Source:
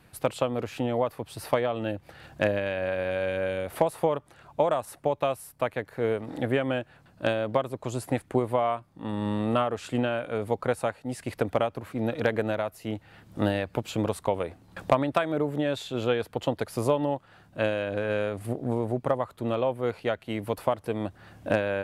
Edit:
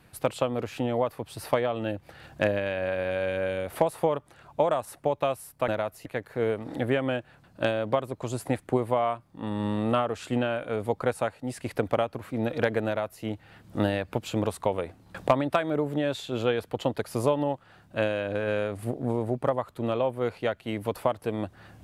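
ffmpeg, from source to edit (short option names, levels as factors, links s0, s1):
-filter_complex "[0:a]asplit=3[s0][s1][s2];[s0]atrim=end=5.682[s3];[s1]atrim=start=12.478:end=12.862[s4];[s2]atrim=start=5.678[s5];[s3][s4]acrossfade=d=0.004:c1=hsin:c2=hsin[s6];[s6][s5]acrossfade=d=0.004:c1=hsin:c2=hsin"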